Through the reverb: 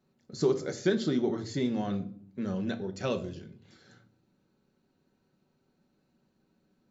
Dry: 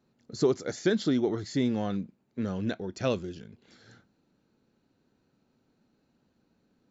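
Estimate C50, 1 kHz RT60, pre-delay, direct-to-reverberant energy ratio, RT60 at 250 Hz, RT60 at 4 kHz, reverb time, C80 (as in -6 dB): 15.0 dB, 0.45 s, 5 ms, 5.0 dB, 0.95 s, 0.35 s, 0.55 s, 18.5 dB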